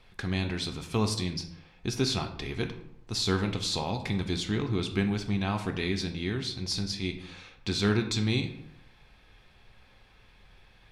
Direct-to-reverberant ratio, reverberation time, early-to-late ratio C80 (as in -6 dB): 5.0 dB, 0.70 s, 13.0 dB